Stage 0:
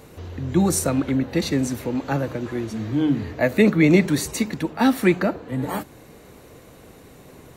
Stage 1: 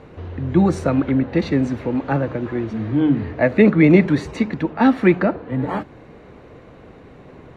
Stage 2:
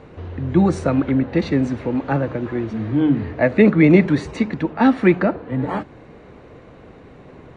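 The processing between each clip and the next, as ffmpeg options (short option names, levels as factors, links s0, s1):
-af "lowpass=2400,volume=1.5"
-af "aresample=22050,aresample=44100"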